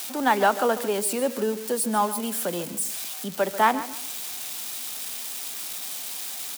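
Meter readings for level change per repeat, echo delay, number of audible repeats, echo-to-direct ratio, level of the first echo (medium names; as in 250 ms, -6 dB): -12.0 dB, 142 ms, 2, -13.5 dB, -14.0 dB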